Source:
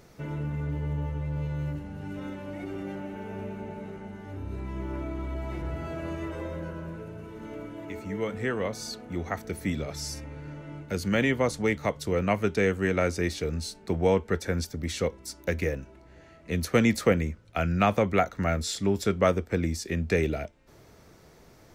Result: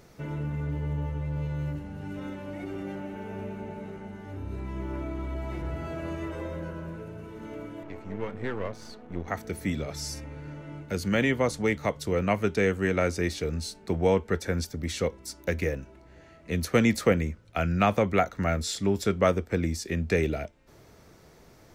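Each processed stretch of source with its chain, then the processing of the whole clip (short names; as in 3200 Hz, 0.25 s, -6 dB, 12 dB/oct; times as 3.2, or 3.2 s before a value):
7.83–9.28 half-wave gain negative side -12 dB + LPF 2200 Hz 6 dB/oct
whole clip: dry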